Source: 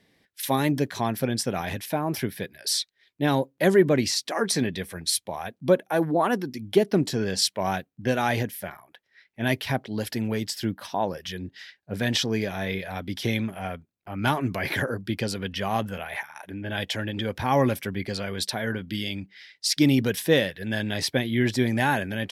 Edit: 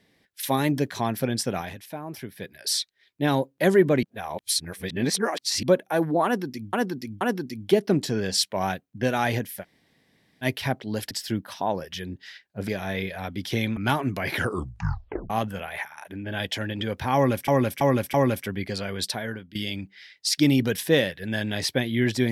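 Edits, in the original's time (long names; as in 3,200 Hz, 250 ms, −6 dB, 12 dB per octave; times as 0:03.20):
0:01.56–0:02.53: duck −9 dB, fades 0.18 s
0:04.03–0:05.63: reverse
0:06.25–0:06.73: repeat, 3 plays
0:08.66–0:09.48: fill with room tone, crossfade 0.06 s
0:10.15–0:10.44: remove
0:12.01–0:12.40: remove
0:13.49–0:14.15: remove
0:14.73: tape stop 0.95 s
0:17.53–0:17.86: repeat, 4 plays
0:18.49–0:18.94: fade out, to −17 dB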